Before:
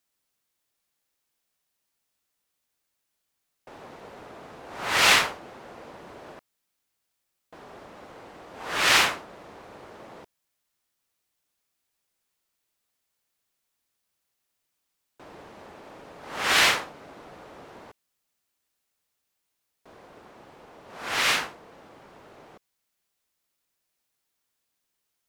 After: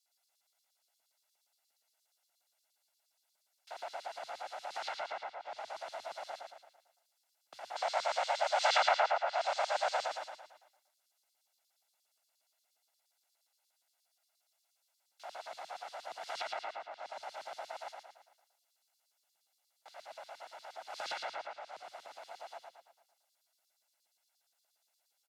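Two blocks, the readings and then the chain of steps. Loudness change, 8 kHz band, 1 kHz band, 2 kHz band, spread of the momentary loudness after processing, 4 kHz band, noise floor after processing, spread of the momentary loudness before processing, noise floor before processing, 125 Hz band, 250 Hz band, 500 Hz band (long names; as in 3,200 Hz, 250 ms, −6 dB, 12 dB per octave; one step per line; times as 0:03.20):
−15.5 dB, −16.5 dB, −3.0 dB, −14.0 dB, 20 LU, −14.0 dB, −81 dBFS, 21 LU, −80 dBFS, below −30 dB, below −25 dB, −0.5 dB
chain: lower of the sound and its delayed copy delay 1.5 ms
treble cut that deepens with the level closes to 930 Hz, closed at −24 dBFS
mains-hum notches 60/120/180/240/300/360/420/480/540/600 Hz
auto-filter high-pass square 8.5 Hz 540–4,200 Hz
low-shelf EQ 120 Hz −6.5 dB
downward compressor 16 to 1, threshold −38 dBFS, peak gain reduction 17 dB
frequency shifter +98 Hz
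gain on a spectral selection 0:07.76–0:10.06, 470–8,800 Hz +12 dB
repeating echo 112 ms, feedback 48%, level −4 dB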